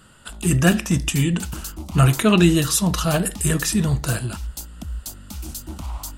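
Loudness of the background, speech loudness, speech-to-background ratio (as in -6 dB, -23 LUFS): -33.5 LUFS, -19.5 LUFS, 14.0 dB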